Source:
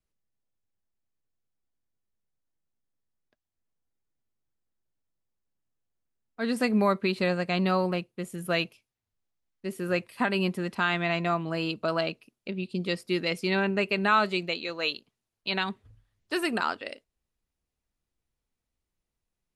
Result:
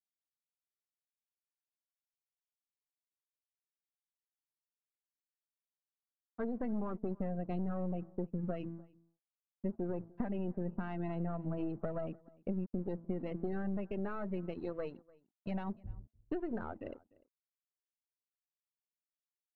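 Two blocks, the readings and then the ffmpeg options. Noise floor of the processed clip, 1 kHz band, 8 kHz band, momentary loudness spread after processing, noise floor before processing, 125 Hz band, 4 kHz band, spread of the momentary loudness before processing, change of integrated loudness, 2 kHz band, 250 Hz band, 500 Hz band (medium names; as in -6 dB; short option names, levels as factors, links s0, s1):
under -85 dBFS, -17.0 dB, under -30 dB, 9 LU, under -85 dBFS, -6.5 dB, under -30 dB, 13 LU, -11.5 dB, -24.5 dB, -7.5 dB, -11.0 dB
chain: -filter_complex "[0:a]afftfilt=real='re*pow(10,6/40*sin(2*PI*(0.6*log(max(b,1)*sr/1024/100)/log(2)-(1.7)*(pts-256)/sr)))':imag='im*pow(10,6/40*sin(2*PI*(0.6*log(max(b,1)*sr/1024/100)/log(2)-(1.7)*(pts-256)/sr)))':win_size=1024:overlap=0.75,aemphasis=mode=reproduction:type=bsi,bandreject=f=2400:w=21,bandreject=f=55.62:t=h:w=4,bandreject=f=111.24:t=h:w=4,bandreject=f=166.86:t=h:w=4,bandreject=f=222.48:t=h:w=4,bandreject=f=278.1:t=h:w=4,bandreject=f=333.72:t=h:w=4,aeval=exprs='(tanh(12.6*val(0)+0.65)-tanh(0.65))/12.6':c=same,equalizer=f=2800:w=0.86:g=-3,alimiter=limit=0.0891:level=0:latency=1:release=68,acompressor=threshold=0.0141:ratio=6,afftfilt=real='re*gte(hypot(re,im),0.00631)':imag='im*gte(hypot(re,im),0.00631)':win_size=1024:overlap=0.75,aeval=exprs='sgn(val(0))*max(abs(val(0))-0.00106,0)':c=same,adynamicsmooth=sensitivity=0.5:basefreq=1100,asplit=2[s0][s1];[s1]adelay=297.4,volume=0.0631,highshelf=f=4000:g=-6.69[s2];[s0][s2]amix=inputs=2:normalize=0,volume=1.68"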